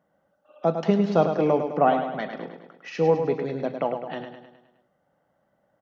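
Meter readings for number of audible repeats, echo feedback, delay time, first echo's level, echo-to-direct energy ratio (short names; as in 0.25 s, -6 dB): 5, 53%, 0.104 s, -7.5 dB, -6.0 dB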